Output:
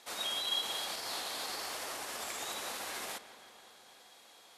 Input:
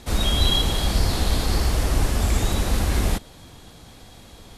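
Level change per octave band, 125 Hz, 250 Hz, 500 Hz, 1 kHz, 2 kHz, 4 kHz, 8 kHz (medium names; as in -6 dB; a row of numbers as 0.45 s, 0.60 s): under -40 dB, -26.0 dB, -15.5 dB, -10.5 dB, -9.5 dB, -10.0 dB, -9.5 dB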